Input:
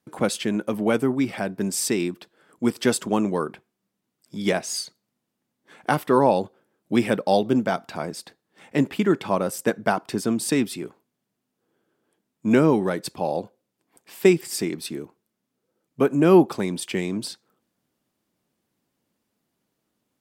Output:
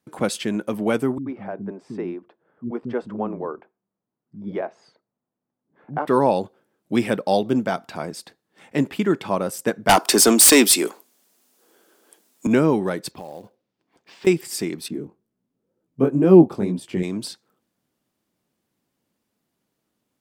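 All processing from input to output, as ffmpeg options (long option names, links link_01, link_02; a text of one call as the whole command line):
ffmpeg -i in.wav -filter_complex "[0:a]asettb=1/sr,asplit=3[link_01][link_02][link_03];[link_01]atrim=end=1.184[link_04];[link_02]atrim=start=1.18:end=6.07,asetpts=PTS-STARTPTS,afade=type=in:duration=0.004:curve=qsin,afade=type=out:start_time=4.886:duration=0.004:curve=qsin,lowpass=1000,lowshelf=frequency=440:gain=-4.5,acrossover=split=260[link_05][link_06];[link_06]adelay=80[link_07];[link_05][link_07]amix=inputs=2:normalize=0,atrim=end_sample=215649[link_08];[link_03]atrim=start=6.066[link_09];[link_04][link_08]acrossfade=duration=0.004:curve1=hsin:curve2=qsin[link_10];[link_10][link_09]acrossfade=duration=0.004:curve1=qsin:curve2=hsin,asettb=1/sr,asplit=3[link_11][link_12][link_13];[link_11]atrim=end=9.894[link_14];[link_12]atrim=start=9.89:end=12.47,asetpts=PTS-STARTPTS,afade=type=in:duration=0.004:curve=qsin,afade=type=out:start_time=2.576:duration=0.004:curve=qsin,highpass=frequency=180:width=0.5412,highpass=frequency=180:width=1.3066,bass=frequency=250:gain=-14,treble=frequency=4000:gain=10,aeval=exprs='0.422*sin(PI/2*3.16*val(0)/0.422)':channel_layout=same[link_15];[link_13]atrim=start=12.466[link_16];[link_14][link_15]acrossfade=duration=0.004:curve1=hsin:curve2=qsin[link_17];[link_17][link_16]acrossfade=duration=0.004:curve1=qsin:curve2=hsin,asettb=1/sr,asplit=3[link_18][link_19][link_20];[link_18]atrim=end=13.114[link_21];[link_19]atrim=start=13.11:end=14.27,asetpts=PTS-STARTPTS,afade=type=in:duration=0.004:curve=qsin,afade=type=out:start_time=1.156:duration=0.004:curve=qsin,lowpass=frequency=5500:width=0.5412,lowpass=frequency=5500:width=1.3066,acompressor=threshold=-32dB:ratio=6:attack=3.2:release=140:knee=1:detection=peak,acrusher=bits=5:mode=log:mix=0:aa=0.000001[link_22];[link_20]atrim=start=14.266[link_23];[link_21][link_22]acrossfade=duration=0.004:curve1=hsin:curve2=qsin[link_24];[link_24][link_23]acrossfade=duration=0.004:curve1=qsin:curve2=hsin,asettb=1/sr,asplit=3[link_25][link_26][link_27];[link_25]atrim=end=14.884[link_28];[link_26]atrim=start=14.88:end=17.03,asetpts=PTS-STARTPTS,afade=type=in:duration=0.004:curve=qsin,afade=type=out:start_time=2.146:duration=0.004:curve=qsin,tiltshelf=frequency=770:gain=7.5,flanger=delay=15.5:depth=7.4:speed=2.1[link_29];[link_27]atrim=start=17.026[link_30];[link_28][link_29]acrossfade=duration=0.004:curve1=hsin:curve2=qsin[link_31];[link_31][link_30]acrossfade=duration=0.004:curve1=qsin:curve2=hsin" out.wav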